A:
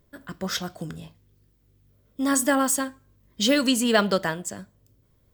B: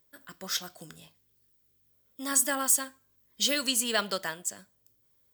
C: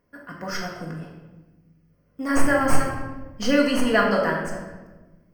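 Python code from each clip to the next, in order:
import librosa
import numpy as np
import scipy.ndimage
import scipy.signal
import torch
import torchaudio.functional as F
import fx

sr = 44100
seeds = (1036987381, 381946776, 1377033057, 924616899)

y1 = fx.tilt_eq(x, sr, slope=3.0)
y1 = y1 * librosa.db_to_amplitude(-8.0)
y2 = fx.tracing_dist(y1, sr, depth_ms=0.023)
y2 = scipy.signal.lfilter(np.full(12, 1.0 / 12), 1.0, y2)
y2 = fx.room_shoebox(y2, sr, seeds[0], volume_m3=690.0, walls='mixed', distance_m=1.8)
y2 = y2 * librosa.db_to_amplitude(8.5)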